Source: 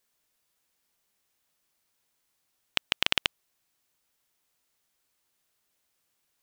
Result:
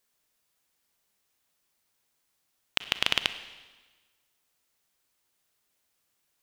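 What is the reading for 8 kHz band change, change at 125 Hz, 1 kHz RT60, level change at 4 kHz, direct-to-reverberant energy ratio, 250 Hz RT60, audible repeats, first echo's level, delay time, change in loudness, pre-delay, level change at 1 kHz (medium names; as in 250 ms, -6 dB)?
0.0 dB, 0.0 dB, 1.3 s, +0.5 dB, 11.5 dB, 1.3 s, no echo, no echo, no echo, +0.5 dB, 31 ms, +0.5 dB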